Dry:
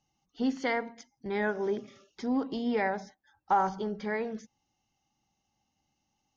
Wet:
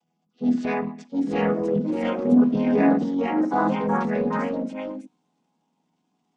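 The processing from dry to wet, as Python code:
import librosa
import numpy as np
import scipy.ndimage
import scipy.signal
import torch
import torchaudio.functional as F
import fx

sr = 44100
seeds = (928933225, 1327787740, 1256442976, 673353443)

y = fx.chord_vocoder(x, sr, chord='major triad', root=52)
y = fx.bass_treble(y, sr, bass_db=7, treble_db=-8, at=(1.76, 2.57))
y = fx.transient(y, sr, attack_db=-8, sustain_db=5)
y = fx.echo_pitch(y, sr, ms=757, semitones=2, count=2, db_per_echo=-3.0)
y = y * librosa.db_to_amplitude(9.0)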